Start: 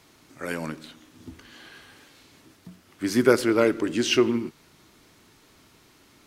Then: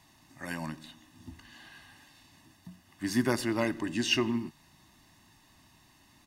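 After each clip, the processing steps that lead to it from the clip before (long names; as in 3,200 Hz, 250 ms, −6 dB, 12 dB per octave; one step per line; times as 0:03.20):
comb filter 1.1 ms, depth 83%
level −6.5 dB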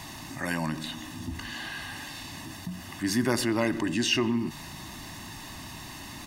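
envelope flattener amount 50%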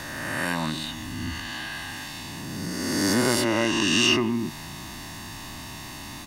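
peak hold with a rise ahead of every peak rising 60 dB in 2.03 s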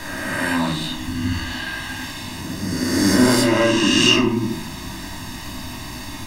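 rectangular room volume 280 cubic metres, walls furnished, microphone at 2.8 metres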